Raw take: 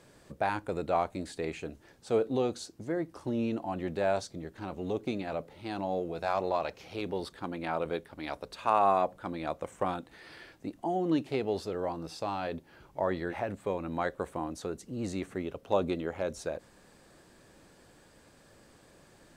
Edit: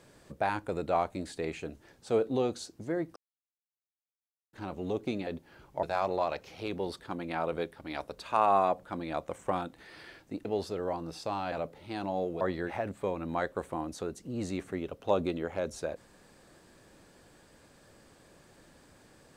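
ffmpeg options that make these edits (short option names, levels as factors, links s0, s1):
-filter_complex "[0:a]asplit=8[s0][s1][s2][s3][s4][s5][s6][s7];[s0]atrim=end=3.16,asetpts=PTS-STARTPTS,afade=t=out:st=3.156:d=0.004:c=hsin[s8];[s1]atrim=start=3.16:end=4.53,asetpts=PTS-STARTPTS,volume=0[s9];[s2]atrim=start=4.53:end=5.272,asetpts=PTS-STARTPTS,afade=t=in:d=0.004:c=hsin[s10];[s3]atrim=start=12.478:end=13.042[s11];[s4]atrim=start=6.158:end=10.782[s12];[s5]atrim=start=11.408:end=12.482[s13];[s6]atrim=start=5.268:end=6.162[s14];[s7]atrim=start=13.038[s15];[s8][s9][s10]concat=n=3:v=0:a=1[s16];[s16][s11]acrossfade=d=0.004:c1=hsin:c2=hsin[s17];[s17][s12]acrossfade=d=0.004:c1=hsin:c2=hsin[s18];[s18][s13]acrossfade=d=0.004:c1=hsin:c2=hsin[s19];[s19][s14]acrossfade=d=0.004:c1=hsin:c2=hsin[s20];[s20][s15]acrossfade=d=0.004:c1=hsin:c2=hsin"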